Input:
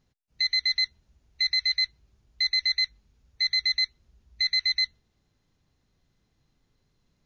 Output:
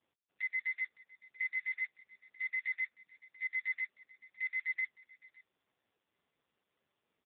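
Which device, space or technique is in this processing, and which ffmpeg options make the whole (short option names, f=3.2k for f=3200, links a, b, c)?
satellite phone: -af "highpass=390,lowpass=3.2k,aecho=1:1:561:0.106" -ar 8000 -c:a libopencore_amrnb -b:a 4750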